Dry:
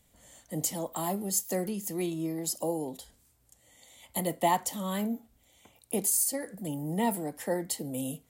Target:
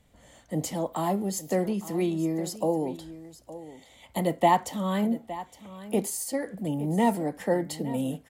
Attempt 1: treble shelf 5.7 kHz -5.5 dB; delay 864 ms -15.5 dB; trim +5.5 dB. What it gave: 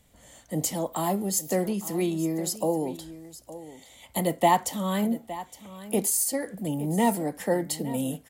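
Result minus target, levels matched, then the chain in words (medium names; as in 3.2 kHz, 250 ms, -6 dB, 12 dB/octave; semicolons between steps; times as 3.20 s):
8 kHz band +6.5 dB
treble shelf 5.7 kHz -16.5 dB; delay 864 ms -15.5 dB; trim +5.5 dB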